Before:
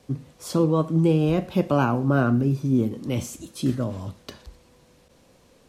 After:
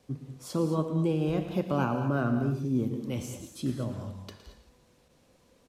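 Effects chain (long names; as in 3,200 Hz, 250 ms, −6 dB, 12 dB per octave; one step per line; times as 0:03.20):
single-tap delay 113 ms −13.5 dB
reverb whose tail is shaped and stops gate 250 ms rising, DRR 8 dB
level −7.5 dB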